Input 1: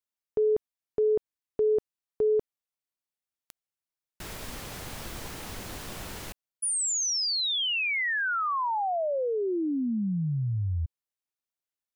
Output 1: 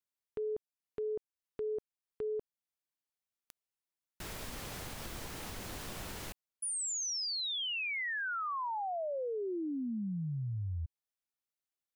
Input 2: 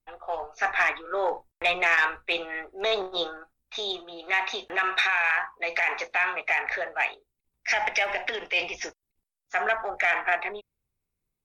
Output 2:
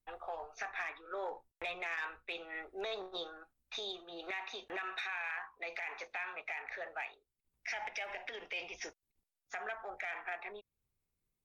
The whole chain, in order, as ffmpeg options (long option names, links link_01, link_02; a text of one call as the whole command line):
ffmpeg -i in.wav -af "acompressor=threshold=-31dB:ratio=5:attack=0.64:release=475:knee=1:detection=rms,volume=-3.5dB" out.wav